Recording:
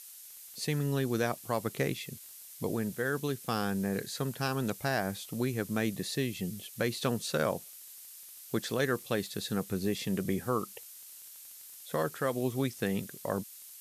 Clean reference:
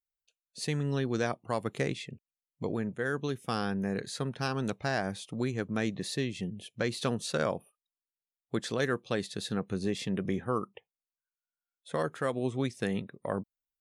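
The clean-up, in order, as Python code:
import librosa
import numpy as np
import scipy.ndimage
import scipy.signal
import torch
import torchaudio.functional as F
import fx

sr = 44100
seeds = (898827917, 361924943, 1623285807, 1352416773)

y = fx.fix_declick_ar(x, sr, threshold=6.5)
y = fx.noise_reduce(y, sr, print_start_s=11.14, print_end_s=11.64, reduce_db=30.0)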